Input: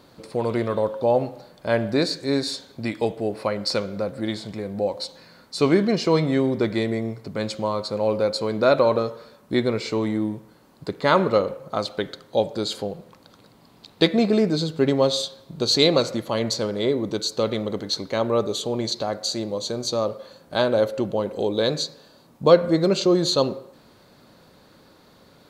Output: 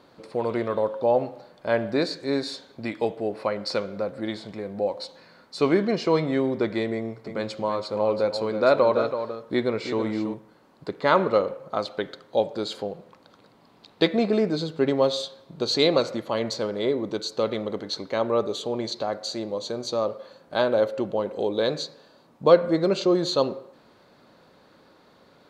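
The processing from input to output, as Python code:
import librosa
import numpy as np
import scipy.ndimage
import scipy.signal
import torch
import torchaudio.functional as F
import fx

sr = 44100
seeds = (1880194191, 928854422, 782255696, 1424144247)

y = fx.echo_single(x, sr, ms=328, db=-9.0, at=(6.94, 10.34))
y = fx.lowpass(y, sr, hz=2700.0, slope=6)
y = fx.low_shelf(y, sr, hz=190.0, db=-10.0)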